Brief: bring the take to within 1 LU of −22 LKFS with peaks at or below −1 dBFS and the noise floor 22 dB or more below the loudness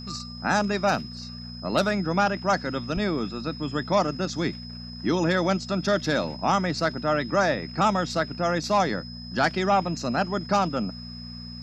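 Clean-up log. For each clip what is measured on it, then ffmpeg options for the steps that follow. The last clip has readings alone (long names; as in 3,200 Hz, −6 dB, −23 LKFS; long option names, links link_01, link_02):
mains hum 60 Hz; hum harmonics up to 240 Hz; level of the hum −37 dBFS; interfering tone 5,100 Hz; level of the tone −41 dBFS; integrated loudness −25.5 LKFS; sample peak −9.0 dBFS; target loudness −22.0 LKFS
→ -af "bandreject=frequency=60:width_type=h:width=4,bandreject=frequency=120:width_type=h:width=4,bandreject=frequency=180:width_type=h:width=4,bandreject=frequency=240:width_type=h:width=4"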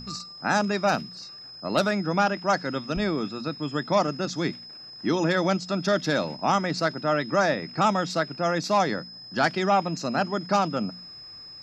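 mains hum none found; interfering tone 5,100 Hz; level of the tone −41 dBFS
→ -af "bandreject=frequency=5100:width=30"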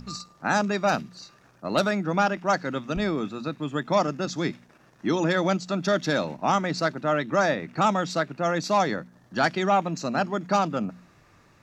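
interfering tone none found; integrated loudness −26.0 LKFS; sample peak −8.5 dBFS; target loudness −22.0 LKFS
→ -af "volume=4dB"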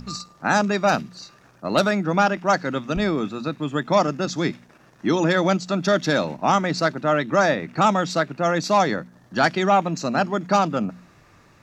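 integrated loudness −22.0 LKFS; sample peak −4.5 dBFS; background noise floor −54 dBFS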